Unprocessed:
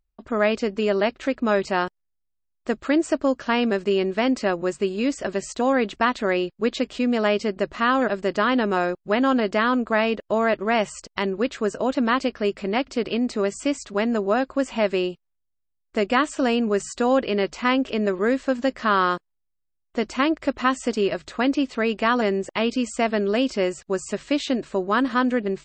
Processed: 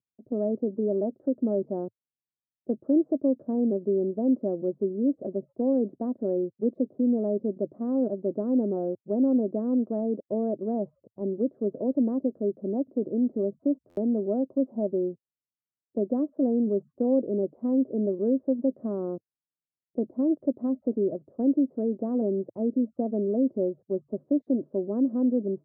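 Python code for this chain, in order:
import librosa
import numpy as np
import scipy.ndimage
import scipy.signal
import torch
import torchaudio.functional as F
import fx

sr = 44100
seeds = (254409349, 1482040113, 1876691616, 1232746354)

y = scipy.signal.sosfilt(scipy.signal.ellip(3, 1.0, 60, [110.0, 590.0], 'bandpass', fs=sr, output='sos'), x)
y = fx.env_lowpass(y, sr, base_hz=410.0, full_db=-21.0)
y = fx.dynamic_eq(y, sr, hz=280.0, q=1.1, threshold_db=-35.0, ratio=4.0, max_db=6)
y = fx.buffer_glitch(y, sr, at_s=(13.89,), block=512, repeats=6)
y = F.gain(torch.from_numpy(y), -6.5).numpy()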